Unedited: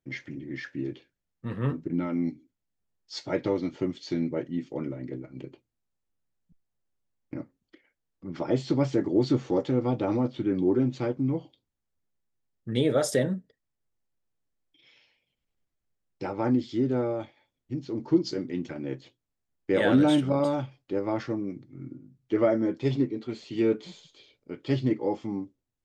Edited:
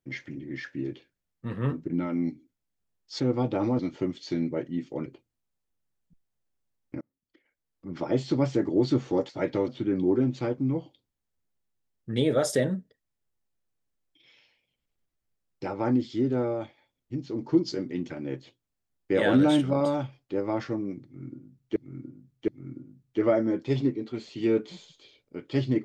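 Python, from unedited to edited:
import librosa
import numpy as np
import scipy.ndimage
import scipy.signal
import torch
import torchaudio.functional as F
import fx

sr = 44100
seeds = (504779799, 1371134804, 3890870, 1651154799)

y = fx.edit(x, sr, fx.swap(start_s=3.2, length_s=0.39, other_s=9.68, other_length_s=0.59),
    fx.cut(start_s=4.86, length_s=0.59),
    fx.fade_in_span(start_s=7.4, length_s=0.86),
    fx.repeat(start_s=21.63, length_s=0.72, count=3), tone=tone)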